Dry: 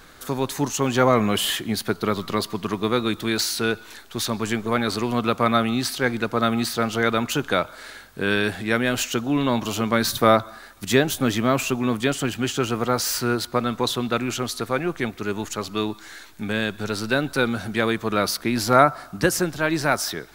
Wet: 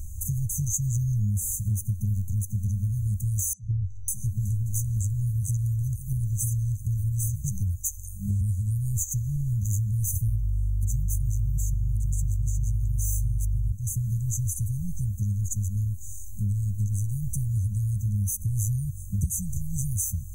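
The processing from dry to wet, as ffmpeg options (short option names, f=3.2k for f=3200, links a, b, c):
-filter_complex "[0:a]asettb=1/sr,asplit=3[a][b][c];[a]atrim=end=3.534[d];[b]atrim=start=3.53:end=8.41,asetpts=PTS-STARTPTS,afade=t=in:d=0.004:c=qsin,afade=t=out:st=4.876:d=0.004:c=qsin,acrossover=split=200|3700[e][f][g];[e]adelay=90[h];[g]adelay=550[i];[h][f][i]amix=inputs=3:normalize=0,atrim=end_sample=215208[j];[c]atrim=start=8.406[k];[d][j]acrossfade=d=0.004:c1=hsin:c2=qsin[l];[l][k]acrossfade=d=0.004:c1=qsin:c2=hsin,asettb=1/sr,asplit=3[m][n][o];[m]atrim=end=10.274[p];[n]atrim=start=10.27:end=13.72,asetpts=PTS-STARTPTS,afade=t=in:d=0.004:c=qsin,afade=t=out:st=3.446:d=0.004:c=qsin,aeval=exprs='val(0)+0.0282*(sin(2*PI*50*n/s)+sin(2*PI*2*50*n/s)/2+sin(2*PI*3*50*n/s)/3+sin(2*PI*4*50*n/s)/4+sin(2*PI*5*50*n/s)/5)':c=same[q];[o]atrim=start=13.716[r];[p][q]acrossfade=d=0.004:c1=hsin:c2=qsin[s];[s][r]acrossfade=d=0.004:c1=qsin:c2=hsin,afftfilt=real='re*(1-between(b*sr/4096,210,6000))':imag='im*(1-between(b*sr/4096,210,6000))':win_size=4096:overlap=0.75,lowshelf=f=120:t=q:w=3:g=10.5,acompressor=threshold=-32dB:ratio=5,volume=8dB"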